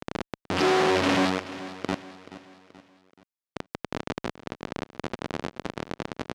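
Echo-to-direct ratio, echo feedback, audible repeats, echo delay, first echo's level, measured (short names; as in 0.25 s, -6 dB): -14.5 dB, 45%, 3, 0.429 s, -15.5 dB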